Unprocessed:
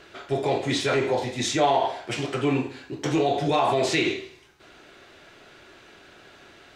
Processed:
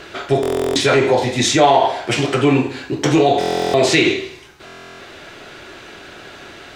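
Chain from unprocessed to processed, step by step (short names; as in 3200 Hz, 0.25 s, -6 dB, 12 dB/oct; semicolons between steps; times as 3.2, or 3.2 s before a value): in parallel at -0.5 dB: compressor, threshold -30 dBFS, peak gain reduction 13 dB; on the sum: stuck buffer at 0.41/3.39/4.65, samples 1024, times 14; gain +7 dB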